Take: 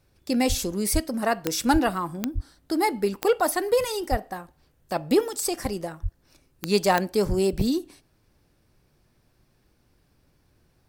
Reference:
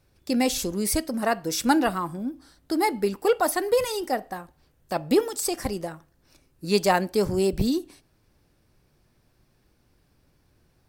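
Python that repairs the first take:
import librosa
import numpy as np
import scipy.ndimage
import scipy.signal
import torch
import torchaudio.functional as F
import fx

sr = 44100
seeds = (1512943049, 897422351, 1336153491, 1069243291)

y = fx.fix_declip(x, sr, threshold_db=-10.5)
y = fx.fix_declick_ar(y, sr, threshold=10.0)
y = fx.fix_deplosive(y, sr, at_s=(0.48, 0.93, 1.72, 2.34, 4.1, 6.02, 7.28))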